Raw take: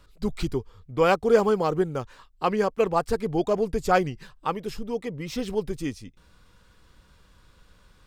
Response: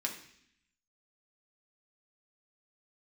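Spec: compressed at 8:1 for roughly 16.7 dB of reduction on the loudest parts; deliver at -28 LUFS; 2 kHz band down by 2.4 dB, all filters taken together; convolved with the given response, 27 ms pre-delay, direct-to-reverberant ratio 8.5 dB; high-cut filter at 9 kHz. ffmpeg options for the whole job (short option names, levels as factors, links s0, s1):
-filter_complex "[0:a]lowpass=9000,equalizer=f=2000:t=o:g=-3.5,acompressor=threshold=0.0282:ratio=8,asplit=2[s0][s1];[1:a]atrim=start_sample=2205,adelay=27[s2];[s1][s2]afir=irnorm=-1:irlink=0,volume=0.282[s3];[s0][s3]amix=inputs=2:normalize=0,volume=2.66"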